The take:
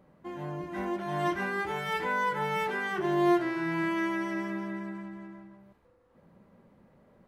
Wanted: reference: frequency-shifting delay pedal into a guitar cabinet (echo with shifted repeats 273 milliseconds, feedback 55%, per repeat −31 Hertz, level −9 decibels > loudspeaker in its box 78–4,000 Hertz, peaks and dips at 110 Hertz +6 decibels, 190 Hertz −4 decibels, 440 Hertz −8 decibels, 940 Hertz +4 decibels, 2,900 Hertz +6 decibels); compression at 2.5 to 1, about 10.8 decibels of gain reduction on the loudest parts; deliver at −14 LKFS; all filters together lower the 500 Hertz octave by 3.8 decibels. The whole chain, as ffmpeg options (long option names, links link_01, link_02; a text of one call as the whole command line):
ffmpeg -i in.wav -filter_complex "[0:a]equalizer=frequency=500:width_type=o:gain=-3,acompressor=threshold=-38dB:ratio=2.5,asplit=7[link_01][link_02][link_03][link_04][link_05][link_06][link_07];[link_02]adelay=273,afreqshift=-31,volume=-9dB[link_08];[link_03]adelay=546,afreqshift=-62,volume=-14.2dB[link_09];[link_04]adelay=819,afreqshift=-93,volume=-19.4dB[link_10];[link_05]adelay=1092,afreqshift=-124,volume=-24.6dB[link_11];[link_06]adelay=1365,afreqshift=-155,volume=-29.8dB[link_12];[link_07]adelay=1638,afreqshift=-186,volume=-35dB[link_13];[link_01][link_08][link_09][link_10][link_11][link_12][link_13]amix=inputs=7:normalize=0,highpass=78,equalizer=frequency=110:width_type=q:width=4:gain=6,equalizer=frequency=190:width_type=q:width=4:gain=-4,equalizer=frequency=440:width_type=q:width=4:gain=-8,equalizer=frequency=940:width_type=q:width=4:gain=4,equalizer=frequency=2900:width_type=q:width=4:gain=6,lowpass=frequency=4000:width=0.5412,lowpass=frequency=4000:width=1.3066,volume=23.5dB" out.wav